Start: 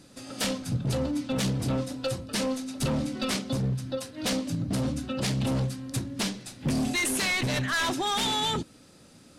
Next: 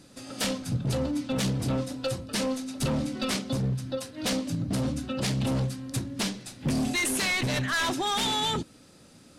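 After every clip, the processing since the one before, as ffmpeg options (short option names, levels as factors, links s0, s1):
-af anull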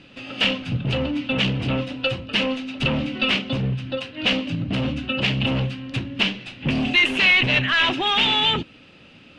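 -af "lowpass=f=2800:t=q:w=6,volume=1.58"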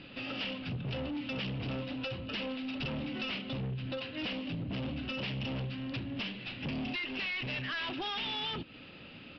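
-af "acompressor=threshold=0.0355:ratio=6,aresample=11025,asoftclip=type=tanh:threshold=0.0282,aresample=44100,volume=0.841"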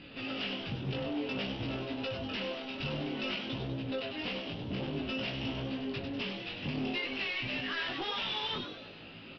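-filter_complex "[0:a]asplit=7[s0][s1][s2][s3][s4][s5][s6];[s1]adelay=98,afreqshift=140,volume=0.447[s7];[s2]adelay=196,afreqshift=280,volume=0.219[s8];[s3]adelay=294,afreqshift=420,volume=0.107[s9];[s4]adelay=392,afreqshift=560,volume=0.0525[s10];[s5]adelay=490,afreqshift=700,volume=0.0257[s11];[s6]adelay=588,afreqshift=840,volume=0.0126[s12];[s0][s7][s8][s9][s10][s11][s12]amix=inputs=7:normalize=0,flanger=delay=18:depth=3.5:speed=0.55,volume=1.41"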